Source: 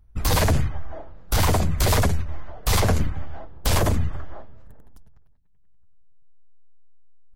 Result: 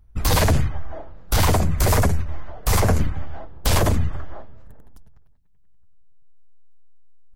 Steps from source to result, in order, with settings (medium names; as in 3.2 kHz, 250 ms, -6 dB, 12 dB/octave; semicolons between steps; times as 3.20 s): 1.55–2.99 s: dynamic bell 3.6 kHz, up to -7 dB, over -44 dBFS, Q 1.4; trim +2 dB